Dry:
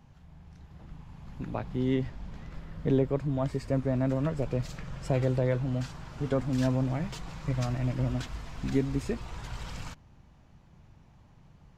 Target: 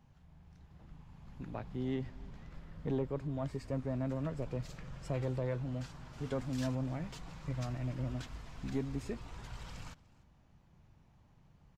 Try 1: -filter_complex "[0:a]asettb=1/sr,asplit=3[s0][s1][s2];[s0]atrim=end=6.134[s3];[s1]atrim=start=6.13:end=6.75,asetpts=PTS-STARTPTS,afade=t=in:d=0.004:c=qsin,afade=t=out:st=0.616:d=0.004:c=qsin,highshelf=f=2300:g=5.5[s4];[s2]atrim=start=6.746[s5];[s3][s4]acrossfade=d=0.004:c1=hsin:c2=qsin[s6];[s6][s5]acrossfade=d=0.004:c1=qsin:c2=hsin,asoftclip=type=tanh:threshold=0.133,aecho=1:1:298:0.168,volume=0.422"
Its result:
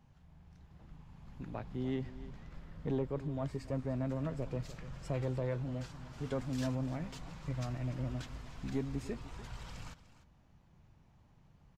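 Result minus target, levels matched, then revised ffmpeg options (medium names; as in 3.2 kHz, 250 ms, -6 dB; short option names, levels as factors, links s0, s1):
echo-to-direct +7.5 dB
-filter_complex "[0:a]asettb=1/sr,asplit=3[s0][s1][s2];[s0]atrim=end=6.134[s3];[s1]atrim=start=6.13:end=6.75,asetpts=PTS-STARTPTS,afade=t=in:d=0.004:c=qsin,afade=t=out:st=0.616:d=0.004:c=qsin,highshelf=f=2300:g=5.5[s4];[s2]atrim=start=6.746[s5];[s3][s4]acrossfade=d=0.004:c1=hsin:c2=qsin[s6];[s6][s5]acrossfade=d=0.004:c1=qsin:c2=hsin,asoftclip=type=tanh:threshold=0.133,aecho=1:1:298:0.0708,volume=0.422"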